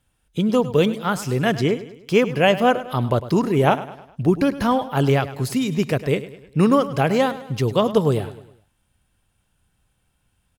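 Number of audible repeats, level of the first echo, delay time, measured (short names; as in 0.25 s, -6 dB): 4, -15.0 dB, 0.103 s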